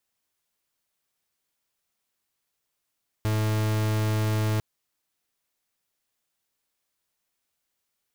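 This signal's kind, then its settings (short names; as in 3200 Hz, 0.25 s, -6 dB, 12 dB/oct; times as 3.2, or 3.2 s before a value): pulse 108 Hz, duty 43% -24.5 dBFS 1.35 s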